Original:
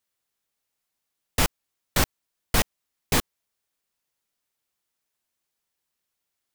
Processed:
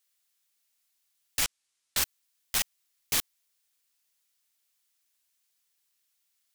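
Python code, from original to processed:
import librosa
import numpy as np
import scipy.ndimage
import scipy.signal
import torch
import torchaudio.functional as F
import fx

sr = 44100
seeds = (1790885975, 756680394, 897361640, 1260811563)

y = fx.lowpass(x, sr, hz=10000.0, slope=24, at=(1.44, 1.97))
y = 10.0 ** (-25.5 / 20.0) * np.tanh(y / 10.0 ** (-25.5 / 20.0))
y = fx.tilt_shelf(y, sr, db=-8.5, hz=1300.0)
y = F.gain(torch.from_numpy(y), -1.5).numpy()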